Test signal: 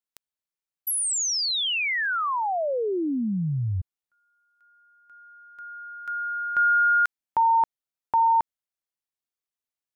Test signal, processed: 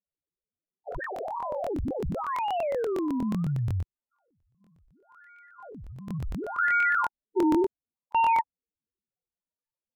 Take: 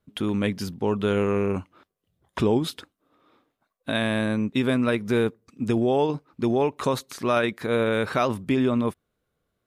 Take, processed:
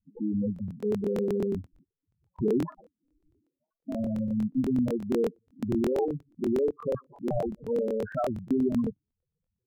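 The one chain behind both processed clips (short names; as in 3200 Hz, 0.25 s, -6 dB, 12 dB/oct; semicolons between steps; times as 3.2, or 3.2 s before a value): decimation with a swept rate 24×, swing 100% 0.7 Hz; loudest bins only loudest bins 4; crackling interface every 0.12 s, samples 1024, repeat, from 0.54; gain -1.5 dB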